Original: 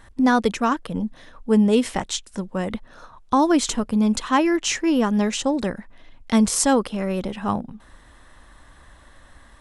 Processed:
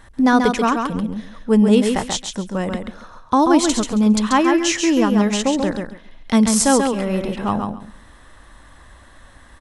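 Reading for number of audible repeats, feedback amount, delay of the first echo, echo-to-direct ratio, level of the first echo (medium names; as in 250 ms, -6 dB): 3, 19%, 136 ms, -5.0 dB, -5.0 dB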